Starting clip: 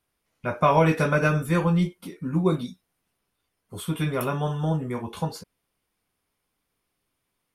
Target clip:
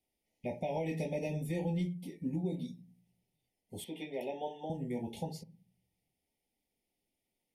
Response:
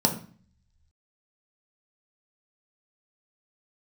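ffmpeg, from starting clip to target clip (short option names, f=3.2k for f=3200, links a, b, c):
-filter_complex "[0:a]asuperstop=centerf=1300:order=20:qfactor=1.4,asplit=2[a][b];[1:a]atrim=start_sample=2205,lowpass=3.9k[c];[b][c]afir=irnorm=-1:irlink=0,volume=-25dB[d];[a][d]amix=inputs=2:normalize=0,alimiter=limit=-18.5dB:level=0:latency=1:release=402,asettb=1/sr,asplit=3[e][f][g];[e]atrim=end=3.844[h];[f]atrim=start=3.84:end=4.7,asetpts=PTS-STARTPTS,afade=t=in:d=0.004:c=qsin,afade=t=out:st=0.856:d=0.004:c=qsin,acrossover=split=290 4600:gain=0.0794 1 0.141[i][j][k];[i][j][k]amix=inputs=3:normalize=0[l];[g]atrim=start=4.696[m];[h][l]acrossfade=d=0.004:c1=hsin:c2=qsin[n];[n][m]acrossfade=d=0.004:c1=qsin:c2=hsin,volume=-8dB"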